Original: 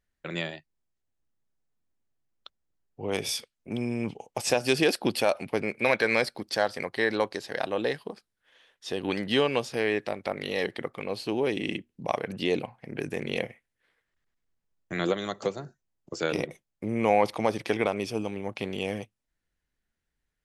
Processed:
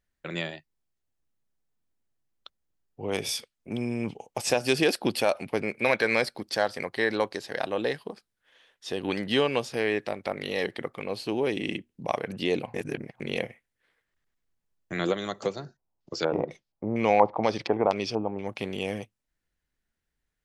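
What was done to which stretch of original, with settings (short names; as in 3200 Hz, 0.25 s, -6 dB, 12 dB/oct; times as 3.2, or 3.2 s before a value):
12.74–13.2 reverse
15.53–18.47 LFO low-pass square 2.1 Hz 880–4800 Hz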